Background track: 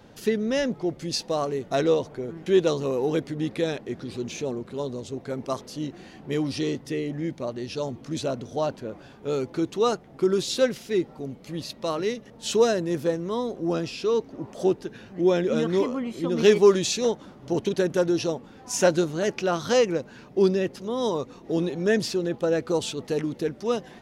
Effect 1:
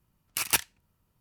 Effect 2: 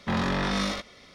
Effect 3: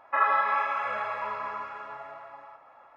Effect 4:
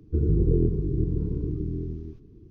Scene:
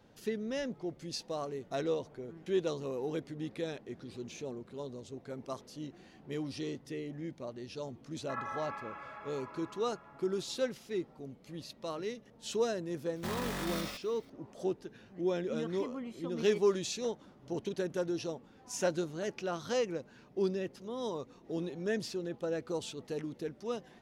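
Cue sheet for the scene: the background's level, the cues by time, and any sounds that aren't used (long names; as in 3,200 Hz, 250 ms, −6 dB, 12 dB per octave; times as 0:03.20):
background track −11.5 dB
0:08.16: mix in 3 −16.5 dB
0:13.16: mix in 2 −11.5 dB + one scale factor per block 3 bits
not used: 1, 4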